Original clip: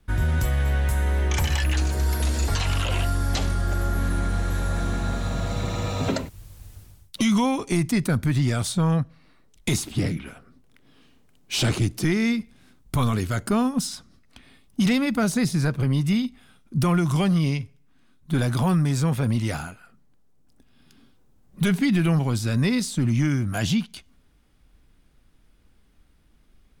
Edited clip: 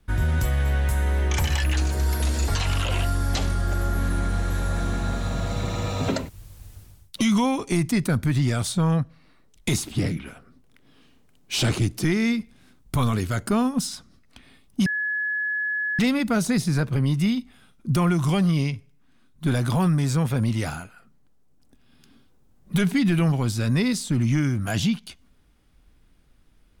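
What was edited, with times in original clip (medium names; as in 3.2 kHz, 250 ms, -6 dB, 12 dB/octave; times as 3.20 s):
14.86 s: add tone 1.7 kHz -23 dBFS 1.13 s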